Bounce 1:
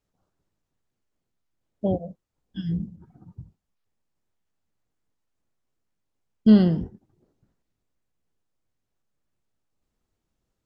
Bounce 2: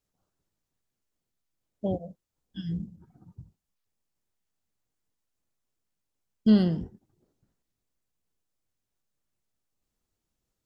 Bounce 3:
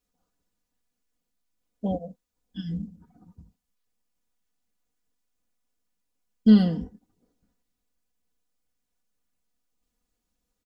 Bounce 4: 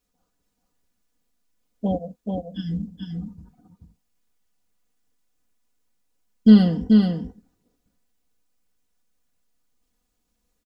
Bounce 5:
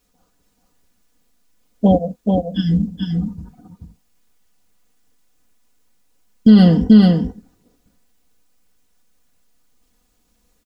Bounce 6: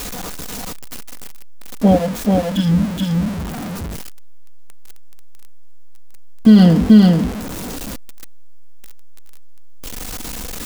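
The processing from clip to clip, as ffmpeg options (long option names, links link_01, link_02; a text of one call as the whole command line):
ffmpeg -i in.wav -af "highshelf=frequency=3700:gain=8,volume=-5dB" out.wav
ffmpeg -i in.wav -af "aecho=1:1:4.1:0.77" out.wav
ffmpeg -i in.wav -af "aecho=1:1:433:0.631,volume=4dB" out.wav
ffmpeg -i in.wav -af "alimiter=level_in=12dB:limit=-1dB:release=50:level=0:latency=1,volume=-1dB" out.wav
ffmpeg -i in.wav -af "aeval=exprs='val(0)+0.5*0.0841*sgn(val(0))':channel_layout=same" out.wav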